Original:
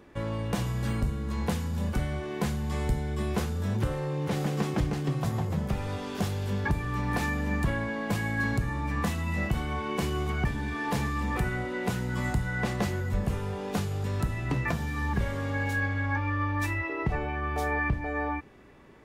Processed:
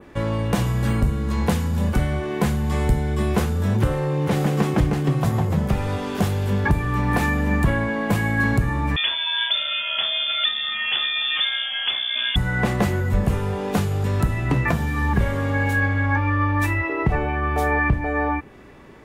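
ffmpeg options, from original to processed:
-filter_complex "[0:a]asettb=1/sr,asplit=3[s0][s1][s2];[s0]atrim=end=8.964[s3];[s1]atrim=start=8.96:end=12.36,asetpts=PTS-STARTPTS,afade=t=in:d=0.004:c=qsin,afade=t=out:st=3.396:d=0.004:c=qsin,lowpass=f=3100:t=q:w=0.5098,lowpass=f=3100:t=q:w=0.6013,lowpass=f=3100:t=q:w=0.9,lowpass=f=3100:t=q:w=2.563,afreqshift=-3600[s4];[s2]atrim=start=12.356[s5];[s3][s4]acrossfade=d=0.004:c1=hsin:c2=qsin[s6];[s6][s5]acrossfade=d=0.004:c1=qsin:c2=hsin,adynamicequalizer=threshold=0.002:dfrequency=5100:dqfactor=1:tfrequency=5100:tqfactor=1:attack=5:release=100:ratio=0.375:range=3:mode=cutabove:tftype=bell,volume=2.66"

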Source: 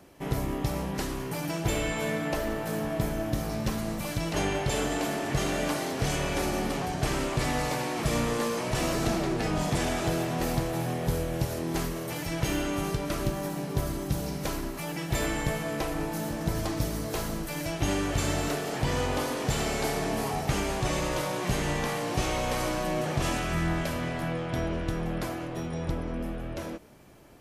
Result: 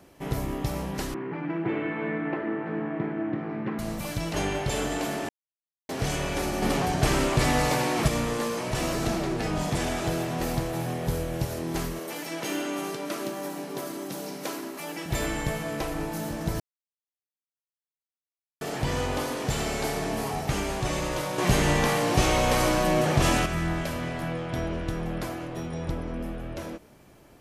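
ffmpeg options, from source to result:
-filter_complex "[0:a]asettb=1/sr,asplit=3[s0][s1][s2];[s0]atrim=end=1.144[s3];[s1]atrim=start=1.14:end=3.79,asetpts=PTS-STARTPTS,afade=t=in:d=0.004:c=qsin,afade=t=out:st=2.646:d=0.004:c=qsin,highpass=f=150:w=0.5412,highpass=f=150:w=1.3066,equalizer=f=340:t=q:w=4:g=8,equalizer=f=600:t=q:w=4:g=-7,equalizer=f=2000:t=q:w=4:g=3,lowpass=f=2200:w=0.5412,lowpass=f=2200:w=1.3066[s4];[s2]atrim=start=3.786[s5];[s3][s4]acrossfade=d=0.004:c1=hsin:c2=qsin[s6];[s6][s5]acrossfade=d=0.004:c1=qsin:c2=hsin,asettb=1/sr,asplit=3[s7][s8][s9];[s7]atrim=end=6.624[s10];[s8]atrim=start=6.62:end=8.08,asetpts=PTS-STARTPTS,afade=t=in:d=0.004:c=qsin,afade=t=out:st=1.456:d=0.004:c=qsin,acontrast=30[s11];[s9]atrim=start=8.076[s12];[s10][s11]acrossfade=d=0.004:c1=hsin:c2=qsin[s13];[s13][s12]acrossfade=d=0.004:c1=qsin:c2=hsin,asettb=1/sr,asplit=3[s14][s15][s16];[s14]atrim=end=11.994[s17];[s15]atrim=start=11.99:end=15.06,asetpts=PTS-STARTPTS,afade=t=in:d=0.004:c=qsin,afade=t=out:st=3.066:d=0.004:c=qsin,highpass=f=220:w=0.5412,highpass=f=220:w=1.3066[s18];[s16]atrim=start=15.056[s19];[s17][s18]acrossfade=d=0.004:c1=hsin:c2=qsin[s20];[s20][s19]acrossfade=d=0.004:c1=qsin:c2=hsin,asettb=1/sr,asplit=3[s21][s22][s23];[s21]atrim=end=21.384[s24];[s22]atrim=start=21.38:end=23.46,asetpts=PTS-STARTPTS,afade=t=in:d=0.004:c=qsin,afade=t=out:st=2.076:d=0.004:c=qsin,acontrast=60[s25];[s23]atrim=start=23.456[s26];[s24][s25]acrossfade=d=0.004:c1=hsin:c2=qsin[s27];[s27][s26]acrossfade=d=0.004:c1=qsin:c2=hsin,asplit=5[s28][s29][s30][s31][s32];[s28]atrim=end=5.29,asetpts=PTS-STARTPTS,afade=t=out:st=5.286:d=0.004:c=hsin[s33];[s29]atrim=start=5.29:end=5.89,asetpts=PTS-STARTPTS,volume=0[s34];[s30]atrim=start=5.89:end=16.6,asetpts=PTS-STARTPTS,afade=t=in:d=0.004:c=hsin,afade=t=out:st=10.706:d=0.004:c=hsin[s35];[s31]atrim=start=16.6:end=18.61,asetpts=PTS-STARTPTS,volume=0[s36];[s32]atrim=start=18.61,asetpts=PTS-STARTPTS,afade=t=in:d=0.004:c=hsin[s37];[s33][s34][s35][s36][s37]concat=n=5:v=0:a=1"

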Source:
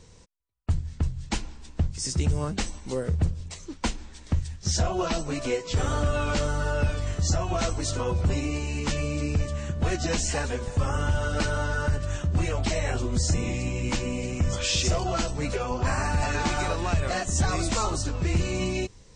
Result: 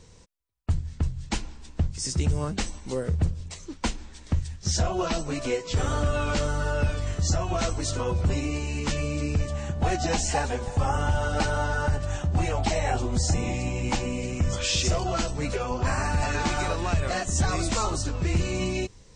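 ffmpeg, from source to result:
-filter_complex "[0:a]asettb=1/sr,asplit=3[s0][s1][s2];[s0]atrim=end=9.504[s3];[s1]atrim=start=9.5:end=14.06,asetpts=PTS-STARTPTS,afade=t=in:d=0.004:c=qsin,afade=t=out:st=4.556:d=0.004:c=qsin,equalizer=f=790:w=4.7:g=12[s4];[s2]atrim=start=14.056[s5];[s3][s4]acrossfade=d=0.004:c1=hsin:c2=qsin[s6];[s6][s5]acrossfade=d=0.004:c1=qsin:c2=hsin"

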